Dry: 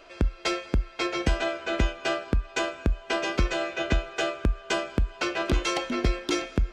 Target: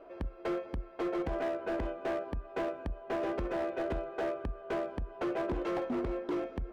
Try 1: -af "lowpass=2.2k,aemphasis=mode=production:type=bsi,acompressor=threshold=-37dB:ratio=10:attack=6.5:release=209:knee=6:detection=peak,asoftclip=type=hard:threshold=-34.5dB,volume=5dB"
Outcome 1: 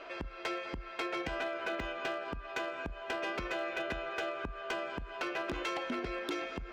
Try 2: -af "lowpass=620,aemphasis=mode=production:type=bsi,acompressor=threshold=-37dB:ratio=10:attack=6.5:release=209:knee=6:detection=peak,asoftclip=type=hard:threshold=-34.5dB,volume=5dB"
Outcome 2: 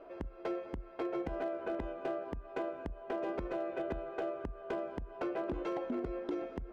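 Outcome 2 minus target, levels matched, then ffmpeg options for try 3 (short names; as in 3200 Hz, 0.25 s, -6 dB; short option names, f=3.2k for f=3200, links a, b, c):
compressor: peak gain reduction +7 dB
-af "lowpass=620,aemphasis=mode=production:type=bsi,acompressor=threshold=-29dB:ratio=10:attack=6.5:release=209:knee=6:detection=peak,asoftclip=type=hard:threshold=-34.5dB,volume=5dB"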